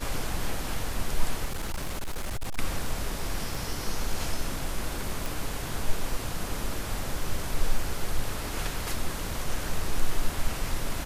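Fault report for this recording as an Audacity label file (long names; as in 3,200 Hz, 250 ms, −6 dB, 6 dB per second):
1.450000	2.590000	clipping −27 dBFS
3.550000	3.550000	drop-out 3.3 ms
5.260000	5.260000	click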